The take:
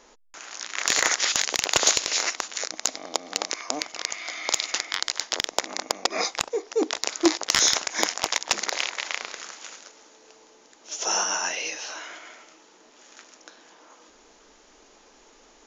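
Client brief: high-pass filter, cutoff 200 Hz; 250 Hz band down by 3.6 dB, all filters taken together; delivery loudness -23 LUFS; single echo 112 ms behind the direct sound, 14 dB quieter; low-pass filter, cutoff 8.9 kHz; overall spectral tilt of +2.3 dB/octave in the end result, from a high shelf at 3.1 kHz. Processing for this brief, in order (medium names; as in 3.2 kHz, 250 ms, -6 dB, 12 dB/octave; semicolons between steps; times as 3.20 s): high-pass 200 Hz; low-pass 8.9 kHz; peaking EQ 250 Hz -5 dB; treble shelf 3.1 kHz +5 dB; delay 112 ms -14 dB; trim -1 dB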